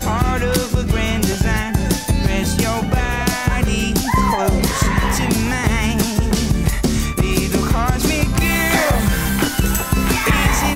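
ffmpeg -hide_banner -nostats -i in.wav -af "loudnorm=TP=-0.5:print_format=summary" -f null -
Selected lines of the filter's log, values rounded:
Input Integrated:    -17.4 LUFS
Input True Peak:      -2.5 dBTP
Input LRA:             1.7 LU
Input Threshold:     -27.4 LUFS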